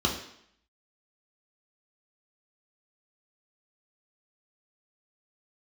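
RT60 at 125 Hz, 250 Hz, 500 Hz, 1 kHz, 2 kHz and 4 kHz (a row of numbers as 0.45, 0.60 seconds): 0.55, 0.70, 0.70, 0.70, 0.70, 0.70 seconds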